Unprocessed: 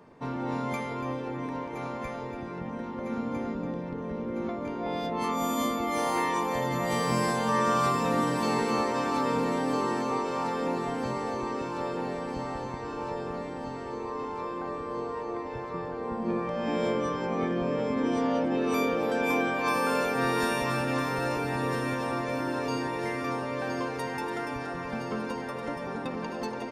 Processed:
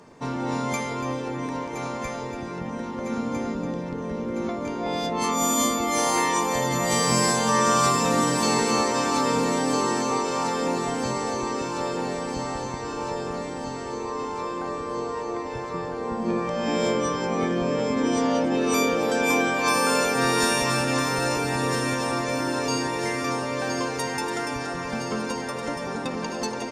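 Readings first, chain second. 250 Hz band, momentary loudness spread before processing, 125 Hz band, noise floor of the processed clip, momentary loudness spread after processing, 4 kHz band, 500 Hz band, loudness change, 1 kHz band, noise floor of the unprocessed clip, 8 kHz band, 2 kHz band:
+4.0 dB, 9 LU, +4.0 dB, -32 dBFS, 10 LU, +10.0 dB, +4.0 dB, +5.0 dB, +4.5 dB, -37 dBFS, +15.5 dB, +5.5 dB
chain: peaking EQ 6.9 kHz +13 dB 1.3 oct; trim +4 dB

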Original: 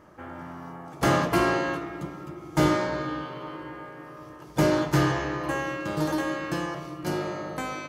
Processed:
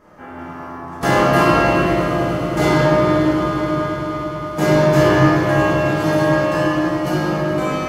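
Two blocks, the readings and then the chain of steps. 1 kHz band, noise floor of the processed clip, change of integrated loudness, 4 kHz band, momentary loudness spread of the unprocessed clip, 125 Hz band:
+10.5 dB, -33 dBFS, +10.5 dB, +8.5 dB, 17 LU, +11.5 dB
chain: on a send: echo with a slow build-up 106 ms, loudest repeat 5, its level -15.5 dB; on the sum: simulated room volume 180 m³, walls hard, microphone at 1.4 m; trim -1 dB

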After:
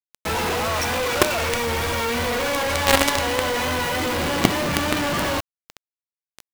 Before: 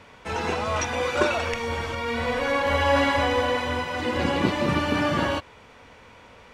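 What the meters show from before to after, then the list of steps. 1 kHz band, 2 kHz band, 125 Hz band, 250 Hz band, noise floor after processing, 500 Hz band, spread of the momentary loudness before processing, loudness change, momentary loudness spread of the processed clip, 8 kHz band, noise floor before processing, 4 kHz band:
+2.0 dB, +3.0 dB, +1.5 dB, +1.0 dB, under -85 dBFS, +1.0 dB, 7 LU, +3.0 dB, 5 LU, +11.5 dB, -50 dBFS, +6.5 dB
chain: vibrato 3.3 Hz 41 cents; companded quantiser 2-bit; saturation -2.5 dBFS, distortion -14 dB; trim +2.5 dB

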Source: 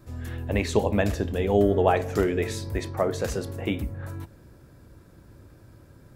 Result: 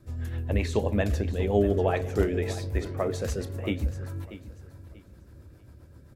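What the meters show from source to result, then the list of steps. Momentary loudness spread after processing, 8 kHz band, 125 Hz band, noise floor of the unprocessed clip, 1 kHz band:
16 LU, -4.0 dB, +1.0 dB, -52 dBFS, -6.5 dB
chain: peaking EQ 73 Hz +11 dB 0.36 oct; rotary cabinet horn 7.5 Hz; on a send: feedback delay 638 ms, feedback 27%, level -14.5 dB; on the sum: trim -1.5 dB

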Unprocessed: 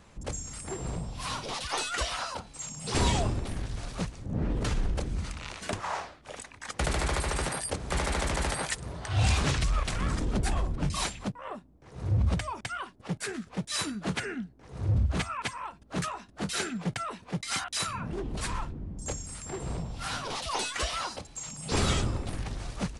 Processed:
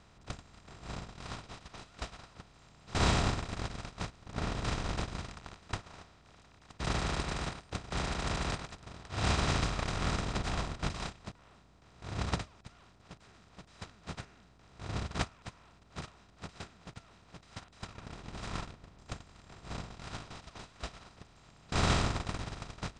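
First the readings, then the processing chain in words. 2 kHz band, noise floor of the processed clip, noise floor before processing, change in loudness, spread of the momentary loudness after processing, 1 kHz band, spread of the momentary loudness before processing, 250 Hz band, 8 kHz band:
-5.5 dB, -61 dBFS, -55 dBFS, -4.5 dB, 22 LU, -5.0 dB, 11 LU, -5.5 dB, -10.0 dB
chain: spectral levelling over time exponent 0.2; low-pass 6.9 kHz 24 dB/octave; gate -16 dBFS, range -35 dB; trim -1.5 dB

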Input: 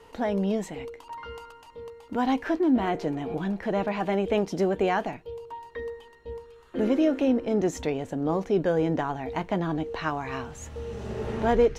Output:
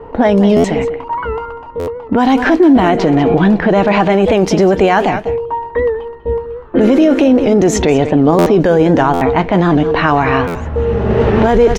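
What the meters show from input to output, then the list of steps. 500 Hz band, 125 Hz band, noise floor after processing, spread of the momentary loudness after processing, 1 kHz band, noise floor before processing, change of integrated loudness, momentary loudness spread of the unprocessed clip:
+15.5 dB, +17.5 dB, -31 dBFS, 10 LU, +16.0 dB, -51 dBFS, +15.0 dB, 17 LU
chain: level-controlled noise filter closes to 890 Hz, open at -20.5 dBFS; on a send: delay 195 ms -15.5 dB; on the sum: loudness maximiser +22 dB; buffer glitch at 0.56/1.79/8.38/9.13/10.47 s, samples 512, times 6; warped record 78 rpm, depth 100 cents; trim -1 dB

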